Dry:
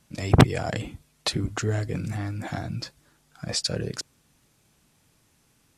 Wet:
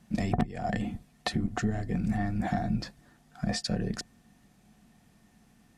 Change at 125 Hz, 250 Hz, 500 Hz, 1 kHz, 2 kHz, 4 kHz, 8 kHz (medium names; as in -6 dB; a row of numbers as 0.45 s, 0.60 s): -7.0 dB, -1.0 dB, -7.0 dB, -3.0 dB, -5.5 dB, -8.5 dB, -9.0 dB